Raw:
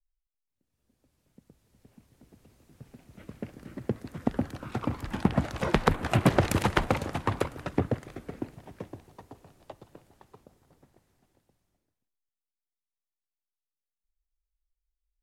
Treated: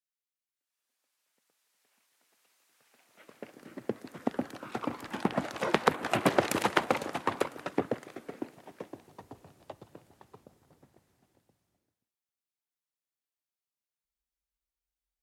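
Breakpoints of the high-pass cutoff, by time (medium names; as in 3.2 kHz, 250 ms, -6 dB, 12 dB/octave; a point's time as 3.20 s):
2.84 s 1.2 kHz
3.68 s 280 Hz
8.87 s 280 Hz
9.31 s 80 Hz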